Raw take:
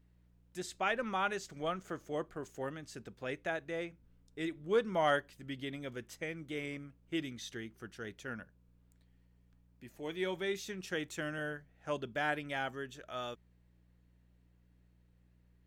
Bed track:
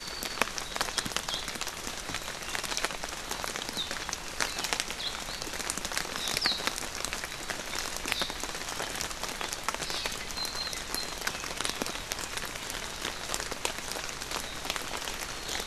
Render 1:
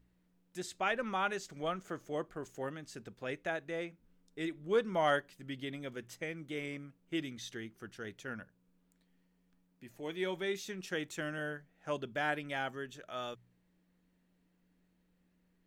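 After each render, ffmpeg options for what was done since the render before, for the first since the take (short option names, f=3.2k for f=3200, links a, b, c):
-af "bandreject=f=60:t=h:w=4,bandreject=f=120:t=h:w=4"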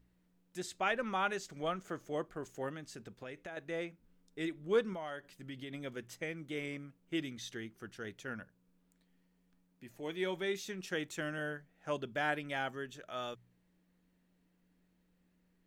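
-filter_complex "[0:a]asettb=1/sr,asplit=3[a][b][c];[a]atrim=end=2.834[d];[b]atrim=start=2.83:end=3.57,asetpts=PTS-STARTPTS,afade=t=in:d=0.004:c=qsin,afade=t=out:st=0.736:d=0.004:c=qsin,acompressor=threshold=-42dB:ratio=6:attack=3.2:release=140:knee=1:detection=peak[e];[c]atrim=start=3.566[f];[d][e]acrossfade=d=0.004:c1=hsin:c2=qsin[g];[g][f]acrossfade=d=0.004:c1=qsin:c2=hsin,asettb=1/sr,asplit=3[h][i][j];[h]atrim=end=4.934[k];[i]atrim=start=4.93:end=5.74,asetpts=PTS-STARTPTS,afade=t=in:d=0.004:c=qsin,afade=t=out:st=0.806:d=0.004:c=qsin,acompressor=threshold=-41dB:ratio=4:attack=3.2:release=140:knee=1:detection=peak[l];[j]atrim=start=5.736[m];[k][l]acrossfade=d=0.004:c1=hsin:c2=qsin[n];[n][m]acrossfade=d=0.004:c1=qsin:c2=hsin"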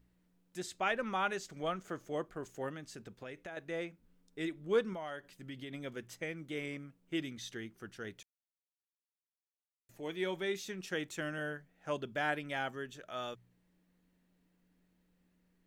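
-filter_complex "[0:a]asplit=3[a][b][c];[a]atrim=end=8.23,asetpts=PTS-STARTPTS,afade=t=out:st=8.226:d=0.004:c=hsin[d];[b]atrim=start=8.23:end=9.89,asetpts=PTS-STARTPTS,volume=0[e];[c]atrim=start=9.89,asetpts=PTS-STARTPTS,afade=t=in:d=0.004:c=hsin[f];[d][e][f]concat=n=3:v=0:a=1"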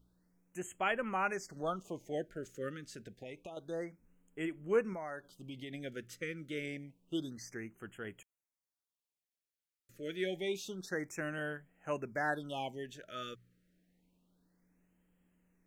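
-af "afftfilt=real='re*(1-between(b*sr/1024,820*pow(4800/820,0.5+0.5*sin(2*PI*0.28*pts/sr))/1.41,820*pow(4800/820,0.5+0.5*sin(2*PI*0.28*pts/sr))*1.41))':imag='im*(1-between(b*sr/1024,820*pow(4800/820,0.5+0.5*sin(2*PI*0.28*pts/sr))/1.41,820*pow(4800/820,0.5+0.5*sin(2*PI*0.28*pts/sr))*1.41))':win_size=1024:overlap=0.75"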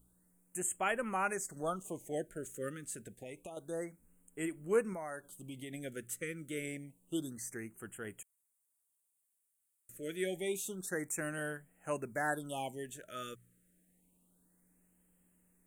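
-af "highshelf=f=6.7k:t=q:w=3:g=11"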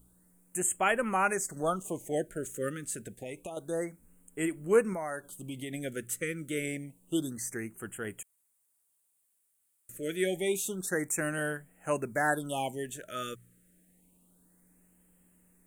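-af "volume=6.5dB"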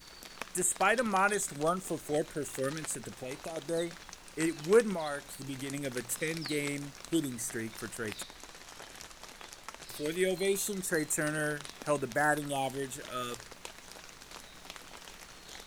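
-filter_complex "[1:a]volume=-13.5dB[a];[0:a][a]amix=inputs=2:normalize=0"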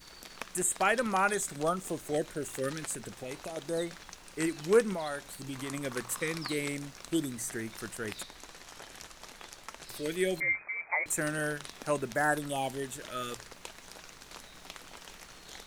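-filter_complex "[0:a]asettb=1/sr,asplit=3[a][b][c];[a]atrim=end=5.554[d];[b]atrim=start=5.55:end=6.54,asetpts=PTS-STARTPTS,afade=t=in:d=0.004:c=qsin,afade=t=out:st=0.986:d=0.004:c=qsin,equalizer=f=1.1k:w=2.5:g=10.5[e];[c]atrim=start=6.536[f];[d][e]acrossfade=d=0.004:c1=hsin:c2=qsin[g];[g][f]acrossfade=d=0.004:c1=qsin:c2=hsin,asettb=1/sr,asplit=3[h][i][j];[h]atrim=end=10.404[k];[i]atrim=start=10.4:end=11.06,asetpts=PTS-STARTPTS,afade=t=in:d=0.004:c=qsin,afade=t=out:st=0.656:d=0.004:c=qsin,lowpass=f=2.1k:t=q:w=0.5098,lowpass=f=2.1k:t=q:w=0.6013,lowpass=f=2.1k:t=q:w=0.9,lowpass=f=2.1k:t=q:w=2.563,afreqshift=-2500[l];[j]atrim=start=11.056[m];[k][l]acrossfade=d=0.004:c1=hsin:c2=qsin[n];[n][m]acrossfade=d=0.004:c1=qsin:c2=hsin"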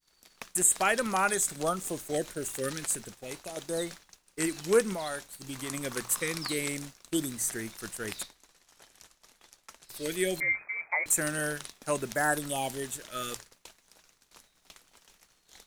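-af "agate=range=-33dB:threshold=-38dB:ratio=3:detection=peak,highshelf=f=4.9k:g=9"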